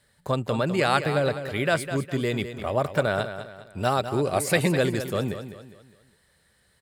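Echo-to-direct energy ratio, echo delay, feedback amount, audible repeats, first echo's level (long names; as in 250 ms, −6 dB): −10.0 dB, 204 ms, 39%, 3, −10.5 dB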